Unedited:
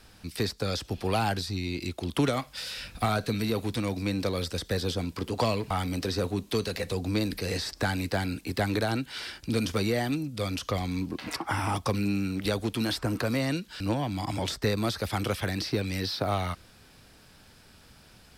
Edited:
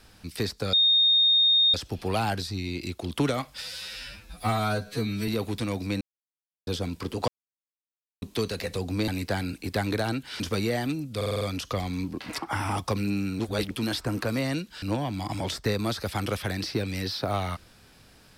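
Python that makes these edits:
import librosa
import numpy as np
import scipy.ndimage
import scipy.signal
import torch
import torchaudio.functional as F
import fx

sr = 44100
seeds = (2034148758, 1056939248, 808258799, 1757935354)

y = fx.edit(x, sr, fx.insert_tone(at_s=0.73, length_s=1.01, hz=3690.0, db=-17.0),
    fx.stretch_span(start_s=2.61, length_s=0.83, factor=2.0),
    fx.silence(start_s=4.17, length_s=0.66),
    fx.silence(start_s=5.44, length_s=0.94),
    fx.cut(start_s=7.24, length_s=0.67),
    fx.cut(start_s=9.23, length_s=0.4),
    fx.stutter(start_s=10.39, slice_s=0.05, count=6),
    fx.reverse_span(start_s=12.38, length_s=0.31), tone=tone)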